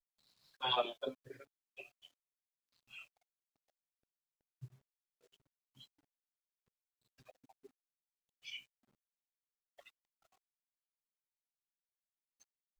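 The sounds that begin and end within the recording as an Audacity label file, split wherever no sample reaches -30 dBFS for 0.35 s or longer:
0.640000	1.080000	sound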